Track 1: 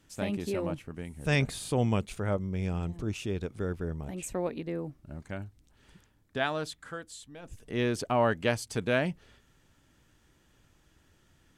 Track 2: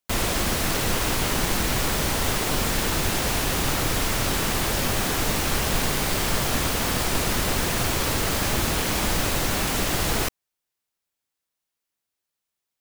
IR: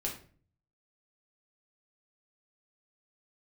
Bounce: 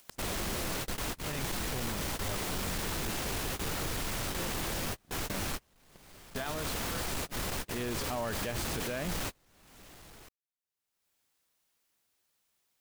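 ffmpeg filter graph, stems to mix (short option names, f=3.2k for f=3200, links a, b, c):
-filter_complex "[0:a]aeval=exprs='sgn(val(0))*max(abs(val(0))-0.00335,0)':c=same,volume=-1dB,afade=t=in:st=5.09:d=0.23:silence=0.281838,asplit=2[a][b];[1:a]volume=22dB,asoftclip=hard,volume=-22dB,volume=-9dB[c];[b]apad=whole_len=564541[d];[c][d]sidechaingate=range=-36dB:threshold=-56dB:ratio=16:detection=peak[e];[a][e]amix=inputs=2:normalize=0,acompressor=mode=upward:threshold=-38dB:ratio=2.5,alimiter=level_in=2.5dB:limit=-24dB:level=0:latency=1:release=14,volume=-2.5dB"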